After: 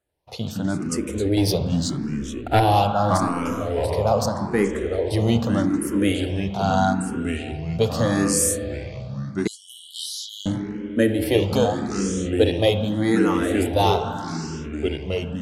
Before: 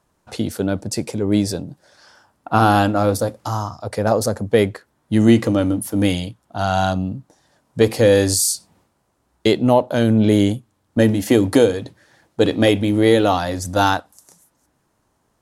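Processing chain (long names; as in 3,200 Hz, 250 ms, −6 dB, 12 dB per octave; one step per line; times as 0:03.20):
noise gate −51 dBFS, range −9 dB
0:01.37–0:02.60: leveller curve on the samples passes 2
spring reverb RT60 2.6 s, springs 30/42/47 ms, chirp 35 ms, DRR 7.5 dB
delay with pitch and tempo change per echo 91 ms, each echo −3 semitones, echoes 3, each echo −6 dB
0:09.47–0:10.46: linear-phase brick-wall high-pass 2,900 Hz
frequency shifter mixed with the dry sound +0.81 Hz
level −1.5 dB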